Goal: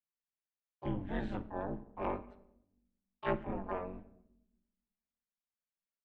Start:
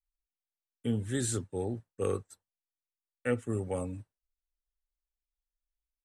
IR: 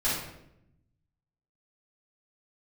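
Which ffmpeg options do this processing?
-filter_complex "[0:a]bandreject=f=266.4:t=h:w=4,bandreject=f=532.8:t=h:w=4,bandreject=f=799.2:t=h:w=4,asplit=4[s0][s1][s2][s3];[s1]asetrate=29433,aresample=44100,atempo=1.49831,volume=0.126[s4];[s2]asetrate=66075,aresample=44100,atempo=0.66742,volume=0.224[s5];[s3]asetrate=88200,aresample=44100,atempo=0.5,volume=0.501[s6];[s0][s4][s5][s6]amix=inputs=4:normalize=0,highpass=f=120:w=0.5412,highpass=f=120:w=1.3066,equalizer=f=140:t=q:w=4:g=8,equalizer=f=270:t=q:w=4:g=-8,equalizer=f=400:t=q:w=4:g=-8,lowpass=f=2600:w=0.5412,lowpass=f=2600:w=1.3066,asplit=2[s7][s8];[1:a]atrim=start_sample=2205[s9];[s8][s9]afir=irnorm=-1:irlink=0,volume=0.0708[s10];[s7][s10]amix=inputs=2:normalize=0,aeval=exprs='val(0)*sin(2*PI*94*n/s)':c=same,volume=0.891"

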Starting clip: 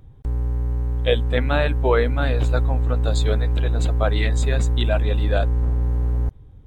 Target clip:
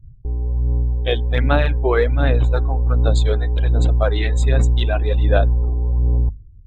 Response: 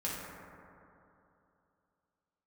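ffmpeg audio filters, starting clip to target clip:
-af "afftdn=nr=35:nf=-39,aphaser=in_gain=1:out_gain=1:delay=2.8:decay=0.46:speed=1.3:type=sinusoidal,bandreject=f=50:t=h:w=6,bandreject=f=100:t=h:w=6,bandreject=f=150:t=h:w=6,bandreject=f=200:t=h:w=6,bandreject=f=250:t=h:w=6"

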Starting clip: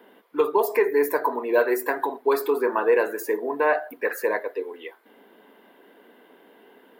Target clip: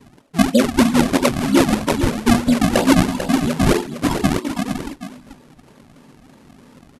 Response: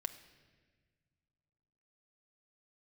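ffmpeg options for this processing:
-af "acrusher=samples=31:mix=1:aa=0.000001:lfo=1:lforange=49.6:lforate=3.1,aecho=1:1:449:0.355,asetrate=25476,aresample=44100,atempo=1.73107,volume=2.11"

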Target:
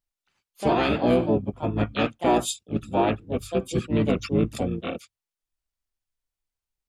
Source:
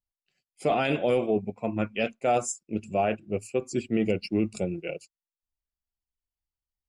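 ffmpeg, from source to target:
-filter_complex "[0:a]bandreject=f=50:t=h:w=6,bandreject=f=100:t=h:w=6,asplit=4[s0][s1][s2][s3];[s1]asetrate=22050,aresample=44100,atempo=2,volume=0.891[s4];[s2]asetrate=29433,aresample=44100,atempo=1.49831,volume=0.316[s5];[s3]asetrate=58866,aresample=44100,atempo=0.749154,volume=0.562[s6];[s0][s4][s5][s6]amix=inputs=4:normalize=0"

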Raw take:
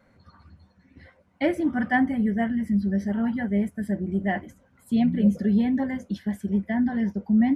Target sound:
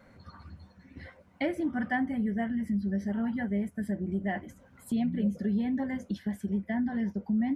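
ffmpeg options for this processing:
-af "acompressor=threshold=0.0112:ratio=2,volume=1.5"

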